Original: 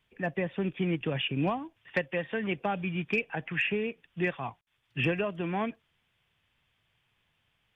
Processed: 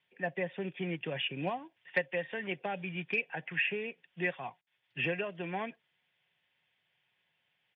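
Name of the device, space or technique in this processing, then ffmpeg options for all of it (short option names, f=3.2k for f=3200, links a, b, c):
kitchen radio: -af "highpass=200,equalizer=f=210:t=q:w=4:g=-7,equalizer=f=340:t=q:w=4:g=-6,equalizer=f=1.2k:t=q:w=4:g=-8,equalizer=f=1.9k:t=q:w=4:g=3,lowpass=f=4.5k:w=0.5412,lowpass=f=4.5k:w=1.3066,aecho=1:1:5.5:0.33,volume=-3dB"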